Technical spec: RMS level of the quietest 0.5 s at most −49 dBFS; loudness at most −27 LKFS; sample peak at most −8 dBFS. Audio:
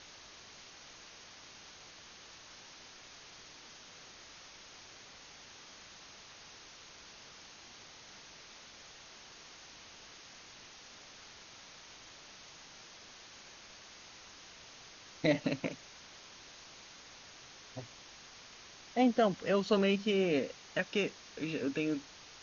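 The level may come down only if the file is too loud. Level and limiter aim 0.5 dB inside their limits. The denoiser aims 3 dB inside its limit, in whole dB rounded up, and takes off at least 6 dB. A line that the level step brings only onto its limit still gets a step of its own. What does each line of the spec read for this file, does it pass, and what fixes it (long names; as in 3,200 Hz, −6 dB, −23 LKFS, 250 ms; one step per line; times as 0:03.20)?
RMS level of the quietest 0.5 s −54 dBFS: in spec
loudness −33.5 LKFS: in spec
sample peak −16.0 dBFS: in spec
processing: no processing needed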